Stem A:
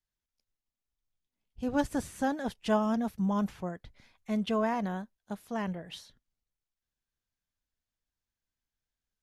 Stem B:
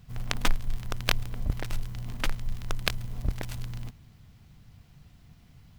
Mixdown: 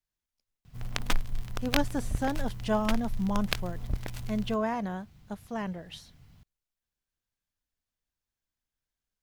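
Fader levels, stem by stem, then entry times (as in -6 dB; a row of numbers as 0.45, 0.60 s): -0.5, -2.5 dB; 0.00, 0.65 s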